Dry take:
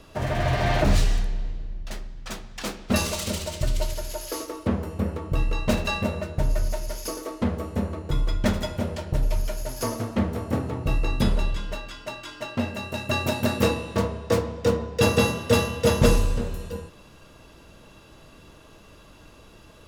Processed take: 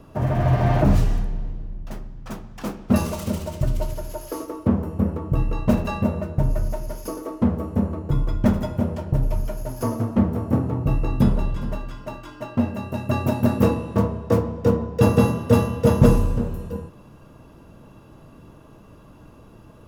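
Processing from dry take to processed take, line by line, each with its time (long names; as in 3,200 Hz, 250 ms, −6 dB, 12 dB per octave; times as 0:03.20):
0:11.20–0:11.88: delay throw 410 ms, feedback 10%, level −14 dB
whole clip: graphic EQ with 10 bands 125 Hz +7 dB, 250 Hz +5 dB, 1,000 Hz +3 dB, 2,000 Hz −5 dB, 4,000 Hz −9 dB, 8,000 Hz −7 dB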